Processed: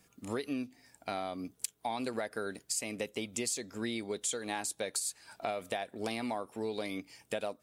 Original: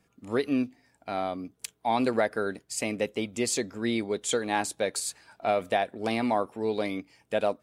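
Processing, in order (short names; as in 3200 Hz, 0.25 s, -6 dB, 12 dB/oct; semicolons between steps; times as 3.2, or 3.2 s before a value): high shelf 3900 Hz +11.5 dB; compressor 6:1, threshold -33 dBFS, peak gain reduction 15.5 dB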